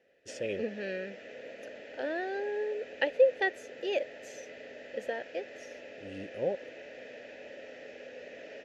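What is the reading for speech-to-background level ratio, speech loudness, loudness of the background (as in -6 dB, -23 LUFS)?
13.5 dB, -33.5 LUFS, -47.0 LUFS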